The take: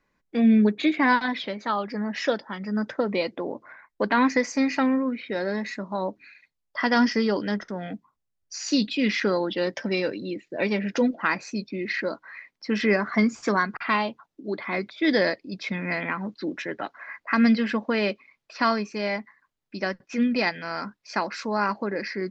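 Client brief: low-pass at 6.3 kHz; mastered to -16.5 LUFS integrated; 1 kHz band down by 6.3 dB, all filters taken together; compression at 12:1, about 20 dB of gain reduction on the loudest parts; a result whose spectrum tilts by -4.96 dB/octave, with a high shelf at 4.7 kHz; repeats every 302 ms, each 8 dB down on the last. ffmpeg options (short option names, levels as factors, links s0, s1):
-af "lowpass=6300,equalizer=f=1000:t=o:g=-7.5,highshelf=f=4700:g=-8,acompressor=threshold=0.0158:ratio=12,aecho=1:1:302|604|906|1208|1510:0.398|0.159|0.0637|0.0255|0.0102,volume=15.8"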